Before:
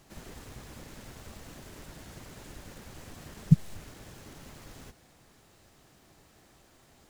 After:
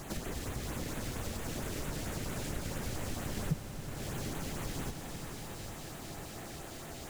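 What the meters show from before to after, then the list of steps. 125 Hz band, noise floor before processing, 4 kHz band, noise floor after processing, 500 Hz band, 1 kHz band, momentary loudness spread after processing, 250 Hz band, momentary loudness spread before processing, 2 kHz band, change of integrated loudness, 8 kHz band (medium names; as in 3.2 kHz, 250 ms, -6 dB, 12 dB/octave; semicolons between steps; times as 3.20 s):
-6.0 dB, -61 dBFS, +8.0 dB, -46 dBFS, +9.5 dB, +8.5 dB, 6 LU, -4.0 dB, 23 LU, +7.5 dB, -5.0 dB, +9.0 dB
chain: compression, threshold -50 dBFS, peak gain reduction 33.5 dB; LFO notch sine 4.4 Hz 920–5500 Hz; on a send: echo with a slow build-up 90 ms, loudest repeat 5, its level -16 dB; on the sum: trim +15 dB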